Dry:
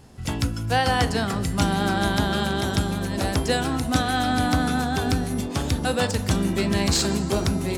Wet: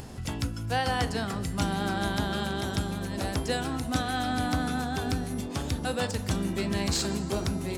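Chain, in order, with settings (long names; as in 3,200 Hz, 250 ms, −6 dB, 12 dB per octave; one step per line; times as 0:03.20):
upward compression, threshold −24 dBFS
level −6.5 dB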